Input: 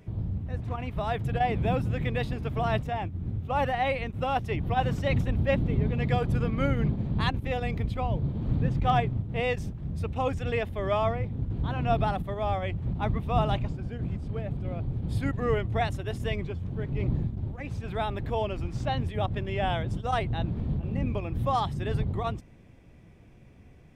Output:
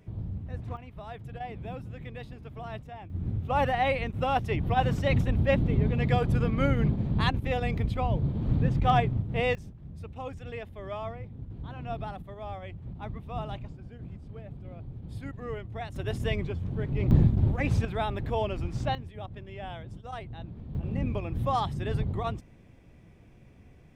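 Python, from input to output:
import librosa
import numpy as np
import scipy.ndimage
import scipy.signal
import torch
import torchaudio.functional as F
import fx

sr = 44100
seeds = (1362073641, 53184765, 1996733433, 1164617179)

y = fx.gain(x, sr, db=fx.steps((0.0, -4.0), (0.77, -12.0), (3.1, 1.0), (9.55, -10.0), (15.96, 1.0), (17.11, 9.0), (17.85, 0.0), (18.95, -11.5), (20.75, -1.0)))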